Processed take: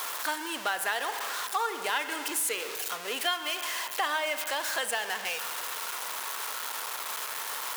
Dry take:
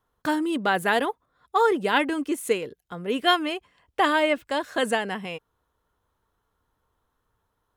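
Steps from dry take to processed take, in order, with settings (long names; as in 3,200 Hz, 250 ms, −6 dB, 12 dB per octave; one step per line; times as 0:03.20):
converter with a step at zero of −27 dBFS
high-pass filter 790 Hz 12 dB per octave
high-shelf EQ 3,700 Hz +6 dB
spring reverb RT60 1.7 s, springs 37 ms, chirp 25 ms, DRR 10 dB
downward compressor 3 to 1, threshold −26 dBFS, peak gain reduction 9.5 dB
level −1.5 dB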